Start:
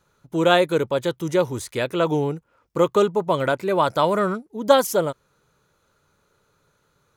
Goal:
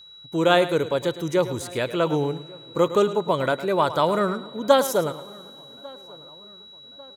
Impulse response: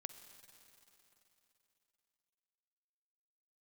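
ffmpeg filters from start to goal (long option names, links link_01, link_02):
-filter_complex "[0:a]aeval=exprs='val(0)+0.00708*sin(2*PI*3900*n/s)':channel_layout=same,asplit=2[link_01][link_02];[link_02]adelay=1146,lowpass=frequency=1900:poles=1,volume=-23.5dB,asplit=2[link_03][link_04];[link_04]adelay=1146,lowpass=frequency=1900:poles=1,volume=0.51,asplit=2[link_05][link_06];[link_06]adelay=1146,lowpass=frequency=1900:poles=1,volume=0.51[link_07];[link_01][link_03][link_05][link_07]amix=inputs=4:normalize=0,asplit=2[link_08][link_09];[1:a]atrim=start_sample=2205,adelay=108[link_10];[link_09][link_10]afir=irnorm=-1:irlink=0,volume=-9dB[link_11];[link_08][link_11]amix=inputs=2:normalize=0,volume=-1.5dB"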